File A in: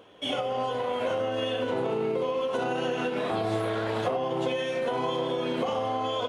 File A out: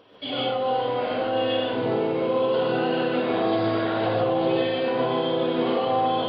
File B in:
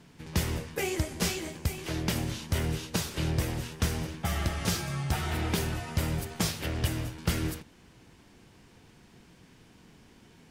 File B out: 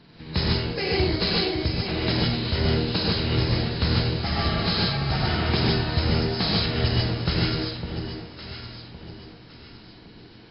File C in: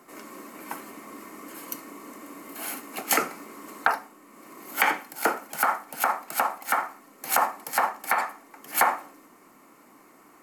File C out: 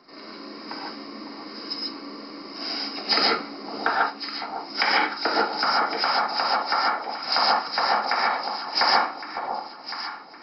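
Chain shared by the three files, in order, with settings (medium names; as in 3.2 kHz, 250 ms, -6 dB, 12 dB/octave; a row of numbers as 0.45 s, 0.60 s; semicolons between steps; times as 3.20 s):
knee-point frequency compression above 3.7 kHz 4:1; echo whose repeats swap between lows and highs 556 ms, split 960 Hz, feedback 56%, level -6.5 dB; gated-style reverb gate 170 ms rising, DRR -3 dB; normalise loudness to -24 LUFS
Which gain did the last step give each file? -1.5 dB, +2.0 dB, -2.0 dB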